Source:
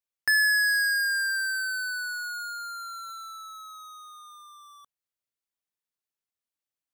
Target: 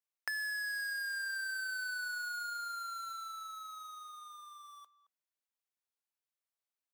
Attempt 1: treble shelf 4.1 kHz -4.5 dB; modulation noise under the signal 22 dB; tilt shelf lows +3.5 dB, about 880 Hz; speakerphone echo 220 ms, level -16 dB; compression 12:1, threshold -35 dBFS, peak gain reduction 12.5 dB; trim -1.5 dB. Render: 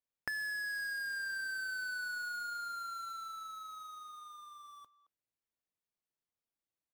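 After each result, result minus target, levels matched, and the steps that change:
500 Hz band +6.0 dB; 8 kHz band -2.5 dB
add after modulation noise: high-pass 630 Hz 12 dB/octave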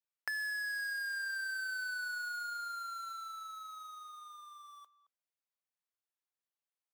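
8 kHz band -2.5 dB
remove: treble shelf 4.1 kHz -4.5 dB

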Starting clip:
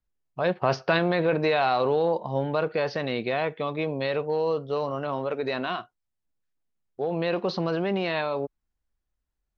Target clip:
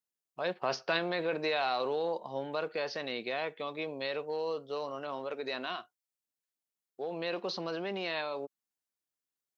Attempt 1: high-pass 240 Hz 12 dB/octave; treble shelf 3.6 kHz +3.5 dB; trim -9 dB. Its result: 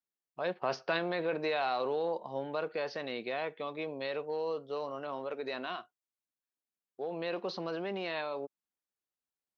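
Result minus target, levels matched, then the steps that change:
8 kHz band -5.5 dB
change: treble shelf 3.6 kHz +12 dB

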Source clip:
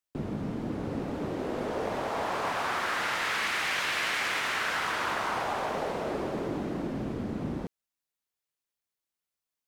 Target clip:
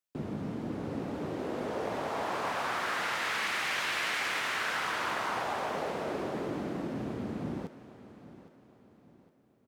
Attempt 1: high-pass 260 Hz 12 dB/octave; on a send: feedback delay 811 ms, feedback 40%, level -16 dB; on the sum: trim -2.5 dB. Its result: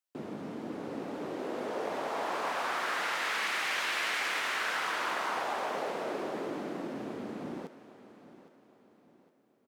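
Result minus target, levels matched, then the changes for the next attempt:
125 Hz band -9.0 dB
change: high-pass 83 Hz 12 dB/octave

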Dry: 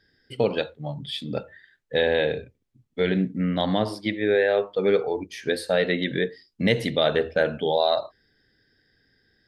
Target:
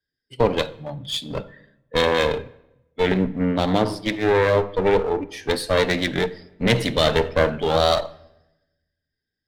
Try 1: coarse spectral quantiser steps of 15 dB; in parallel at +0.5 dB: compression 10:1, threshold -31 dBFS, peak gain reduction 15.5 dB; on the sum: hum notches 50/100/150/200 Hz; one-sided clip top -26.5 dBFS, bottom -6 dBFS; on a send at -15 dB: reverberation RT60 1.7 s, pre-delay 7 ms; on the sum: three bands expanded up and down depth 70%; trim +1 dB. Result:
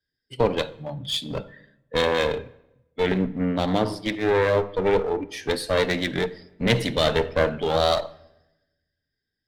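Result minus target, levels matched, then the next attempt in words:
compression: peak gain reduction +10.5 dB
coarse spectral quantiser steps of 15 dB; in parallel at +0.5 dB: compression 10:1, threshold -19.5 dBFS, peak gain reduction 5.5 dB; on the sum: hum notches 50/100/150/200 Hz; one-sided clip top -26.5 dBFS, bottom -6 dBFS; on a send at -15 dB: reverberation RT60 1.7 s, pre-delay 7 ms; on the sum: three bands expanded up and down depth 70%; trim +1 dB

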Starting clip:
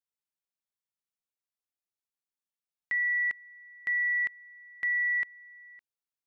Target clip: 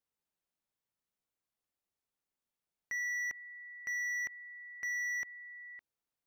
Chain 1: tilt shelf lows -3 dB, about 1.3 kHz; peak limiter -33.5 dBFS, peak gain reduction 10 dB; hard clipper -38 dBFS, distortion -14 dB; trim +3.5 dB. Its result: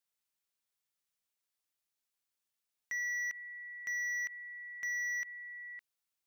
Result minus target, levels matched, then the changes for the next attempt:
1 kHz band -4.0 dB
change: tilt shelf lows +4 dB, about 1.3 kHz

